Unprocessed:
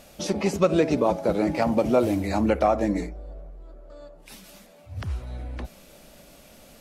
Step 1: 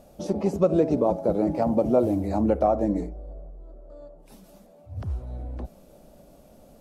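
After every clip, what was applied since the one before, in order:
drawn EQ curve 700 Hz 0 dB, 2,100 Hz −16 dB, 12,000 Hz −9 dB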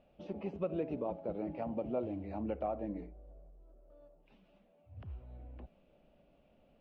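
transistor ladder low-pass 3,100 Hz, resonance 60%
level −5 dB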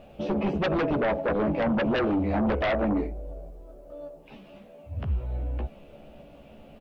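double-tracking delay 14 ms −4 dB
in parallel at −6.5 dB: sine wavefolder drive 14 dB, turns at −21.5 dBFS
on the sum: level +3.5 dB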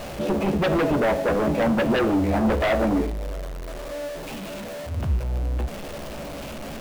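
converter with a step at zero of −33 dBFS
hum removal 104.7 Hz, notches 38
level +3 dB

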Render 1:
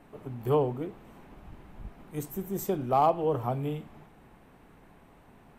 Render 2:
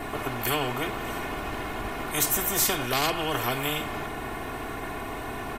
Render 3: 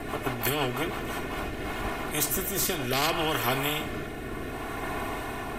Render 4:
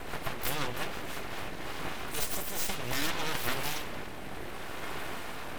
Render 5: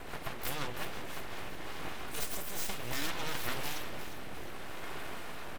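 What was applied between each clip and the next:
comb filter 2.8 ms, depth 87%; every bin compressed towards the loudest bin 4 to 1
reversed playback; upward compression, threshold −31 dBFS; reversed playback; rotating-speaker cabinet horn 6 Hz, later 0.6 Hz, at 0:00.93; level +2 dB
full-wave rectification; level −2.5 dB
repeating echo 355 ms, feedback 53%, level −11.5 dB; level −4.5 dB

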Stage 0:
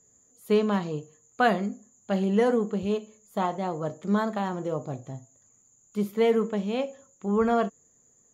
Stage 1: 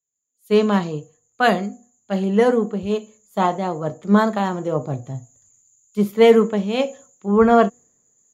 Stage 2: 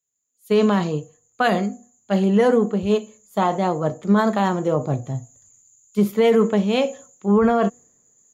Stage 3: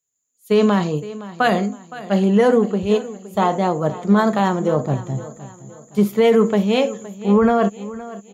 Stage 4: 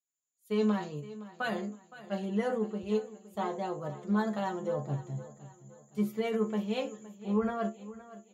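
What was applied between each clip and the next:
automatic gain control gain up to 16 dB; hum removal 242.7 Hz, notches 3; multiband upward and downward expander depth 70%; level −4 dB
boost into a limiter +10.5 dB; level −7.5 dB
repeating echo 516 ms, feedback 41%, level −16.5 dB; level +2 dB
stiff-string resonator 70 Hz, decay 0.24 s, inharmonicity 0.002; level −8.5 dB

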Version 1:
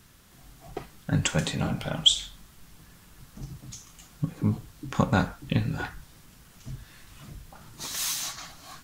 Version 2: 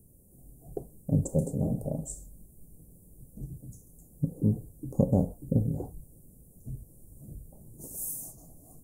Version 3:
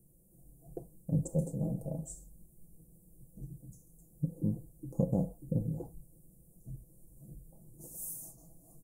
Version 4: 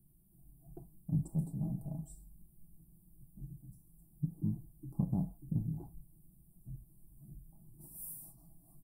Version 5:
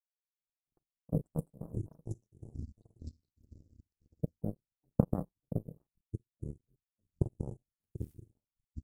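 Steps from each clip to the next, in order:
elliptic band-stop filter 530–9,200 Hz, stop band 60 dB; dynamic equaliser 750 Hz, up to +4 dB, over −47 dBFS, Q 0.8
comb filter 6 ms; level −7.5 dB
phaser with its sweep stopped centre 1,900 Hz, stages 6; level −1 dB
power curve on the samples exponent 3; delay with pitch and tempo change per echo 148 ms, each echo −6 semitones, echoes 2, each echo −6 dB; level +12.5 dB

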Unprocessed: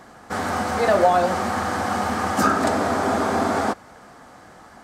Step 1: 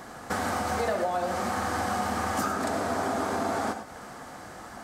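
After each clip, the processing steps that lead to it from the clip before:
high-shelf EQ 7,900 Hz +6.5 dB
downward compressor 6 to 1, threshold −29 dBFS, peak gain reduction 16.5 dB
reverb whose tail is shaped and stops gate 130 ms rising, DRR 7.5 dB
level +2 dB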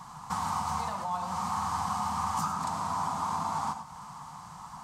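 drawn EQ curve 110 Hz 0 dB, 160 Hz +10 dB, 230 Hz −7 dB, 380 Hz −19 dB, 650 Hz −12 dB, 980 Hz +13 dB, 1,600 Hz −10 dB, 2,700 Hz −2 dB, 6,900 Hz +2 dB, 15,000 Hz −5 dB
level −4 dB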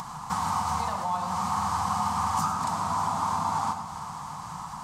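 upward compression, threshold −36 dBFS
on a send: delay that swaps between a low-pass and a high-pass 150 ms, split 1,100 Hz, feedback 83%, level −12 dB
on the sum: level +3.5 dB

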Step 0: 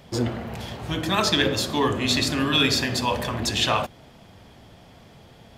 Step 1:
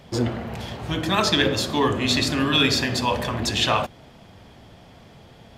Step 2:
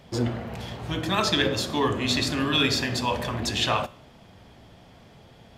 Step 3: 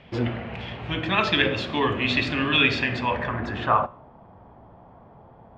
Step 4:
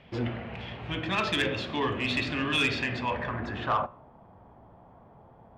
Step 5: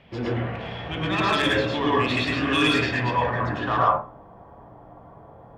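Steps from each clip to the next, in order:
high-shelf EQ 8,200 Hz −5 dB; level +1.5 dB
tuned comb filter 60 Hz, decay 0.54 s, harmonics all, mix 40%
low-pass filter sweep 2,600 Hz → 980 Hz, 0:02.82–0:04.01
soft clipping −13.5 dBFS, distortion −17 dB; level −4.5 dB
convolution reverb RT60 0.30 s, pre-delay 97 ms, DRR −4.5 dB; level +1 dB

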